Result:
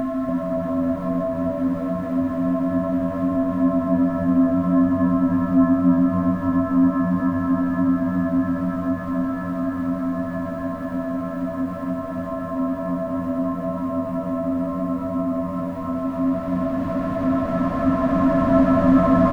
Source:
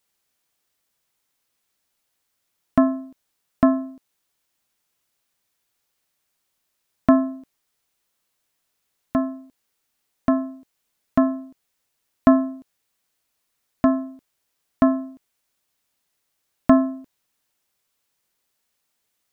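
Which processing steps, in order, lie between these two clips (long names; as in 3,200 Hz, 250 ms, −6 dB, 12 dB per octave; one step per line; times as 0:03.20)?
brickwall limiter −11 dBFS, peak gain reduction 9.5 dB
feedback delay with all-pass diffusion 1,454 ms, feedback 68%, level −6.5 dB
extreme stretch with random phases 38×, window 0.25 s, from 0:16.18
echo with shifted repeats 285 ms, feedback 31%, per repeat −84 Hz, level −7 dB
one half of a high-frequency compander encoder only
level +7 dB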